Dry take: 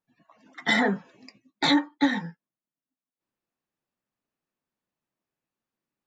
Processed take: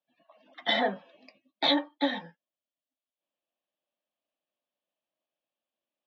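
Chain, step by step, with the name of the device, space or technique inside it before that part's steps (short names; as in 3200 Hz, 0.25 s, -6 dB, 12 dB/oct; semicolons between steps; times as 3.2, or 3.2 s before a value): phone earpiece (speaker cabinet 380–3900 Hz, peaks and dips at 410 Hz -9 dB, 600 Hz +9 dB, 940 Hz -5 dB, 1400 Hz -9 dB, 2000 Hz -7 dB, 3200 Hz +6 dB)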